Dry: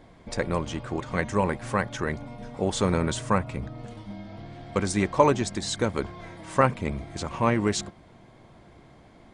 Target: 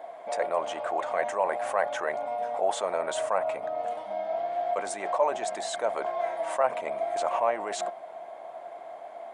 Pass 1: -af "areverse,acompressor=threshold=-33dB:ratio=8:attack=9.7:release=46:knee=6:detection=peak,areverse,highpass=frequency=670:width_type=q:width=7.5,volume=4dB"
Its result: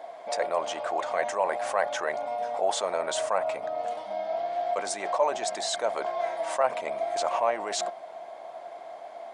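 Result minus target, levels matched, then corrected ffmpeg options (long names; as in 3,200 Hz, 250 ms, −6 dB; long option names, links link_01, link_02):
4,000 Hz band +5.5 dB
-af "areverse,acompressor=threshold=-33dB:ratio=8:attack=9.7:release=46:knee=6:detection=peak,areverse,highpass=frequency=670:width_type=q:width=7.5,equalizer=frequency=5000:width_type=o:width=1.1:gain=-9,volume=4dB"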